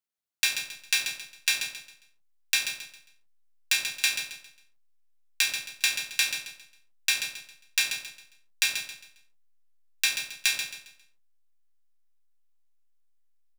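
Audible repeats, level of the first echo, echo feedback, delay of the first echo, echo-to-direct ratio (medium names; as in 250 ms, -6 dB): 3, -8.5 dB, 32%, 135 ms, -8.0 dB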